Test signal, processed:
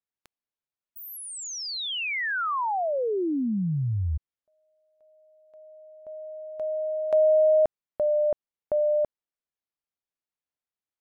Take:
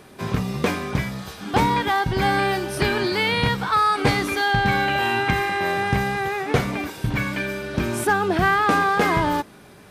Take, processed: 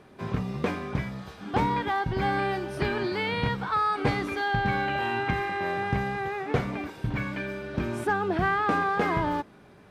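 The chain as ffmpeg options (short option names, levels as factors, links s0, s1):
-af "lowpass=f=2200:p=1,volume=0.531"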